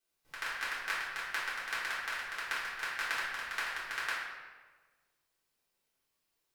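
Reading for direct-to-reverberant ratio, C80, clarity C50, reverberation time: -10.5 dB, 2.5 dB, 0.0 dB, 1.4 s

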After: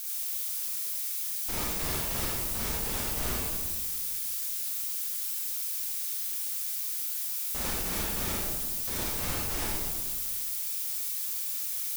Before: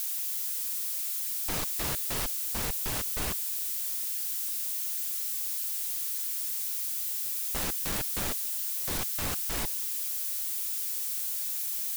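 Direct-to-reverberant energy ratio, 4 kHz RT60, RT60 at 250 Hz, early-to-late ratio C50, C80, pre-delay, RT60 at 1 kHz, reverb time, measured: -5.5 dB, 1.0 s, 1.8 s, -2.5 dB, 0.0 dB, 34 ms, 1.4 s, 1.5 s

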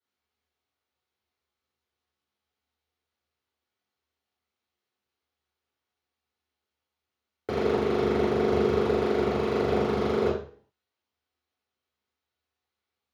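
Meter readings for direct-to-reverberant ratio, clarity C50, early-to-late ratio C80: -11.0 dB, 3.5 dB, 8.5 dB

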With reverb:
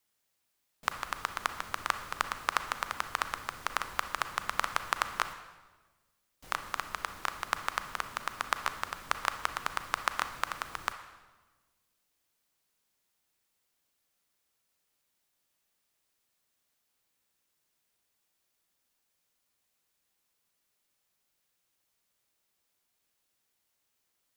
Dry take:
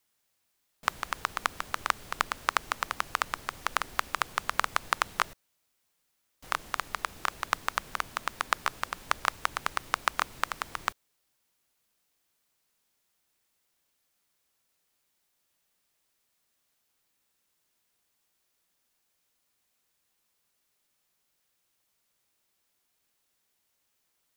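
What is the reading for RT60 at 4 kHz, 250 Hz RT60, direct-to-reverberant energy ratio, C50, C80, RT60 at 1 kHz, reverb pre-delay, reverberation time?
1.1 s, 1.6 s, 9.0 dB, 10.0 dB, 12.5 dB, 1.2 s, 32 ms, 1.3 s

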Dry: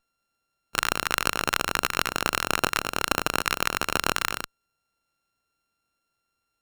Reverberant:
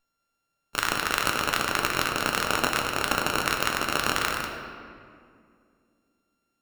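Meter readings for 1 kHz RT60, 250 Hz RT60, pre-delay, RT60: 2.0 s, 3.1 s, 3 ms, 2.2 s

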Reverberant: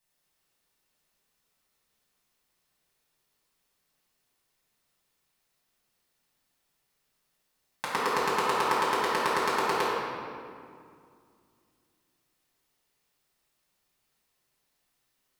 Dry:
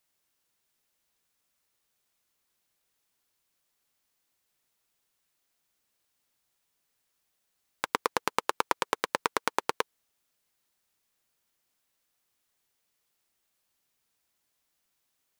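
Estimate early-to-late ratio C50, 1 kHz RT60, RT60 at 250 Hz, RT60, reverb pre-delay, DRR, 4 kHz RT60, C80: -3.0 dB, 2.2 s, 3.1 s, 2.2 s, 4 ms, -8.5 dB, 1.4 s, -1.0 dB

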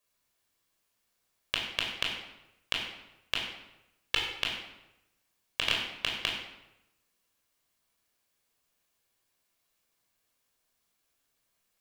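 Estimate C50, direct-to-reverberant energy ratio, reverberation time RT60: 3.0 dB, -1.5 dB, 0.90 s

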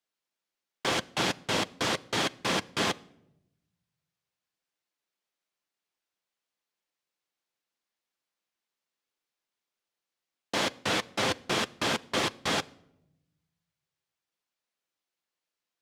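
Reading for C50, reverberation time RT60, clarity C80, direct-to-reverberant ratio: 23.5 dB, no single decay rate, 26.0 dB, 11.5 dB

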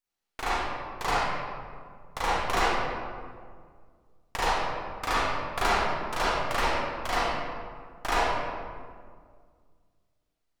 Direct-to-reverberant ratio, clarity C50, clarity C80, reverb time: -9.5 dB, -5.0 dB, -1.0 dB, 1.9 s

